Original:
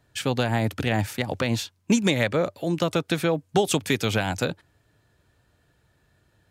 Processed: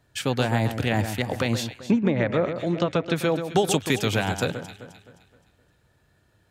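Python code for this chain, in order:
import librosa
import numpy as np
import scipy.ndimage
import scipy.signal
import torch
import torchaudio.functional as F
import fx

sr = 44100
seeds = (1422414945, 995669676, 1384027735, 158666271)

y = fx.echo_alternate(x, sr, ms=130, hz=1800.0, feedback_pct=62, wet_db=-8.5)
y = fx.env_lowpass_down(y, sr, base_hz=1300.0, full_db=-16.0, at=(1.78, 3.15), fade=0.02)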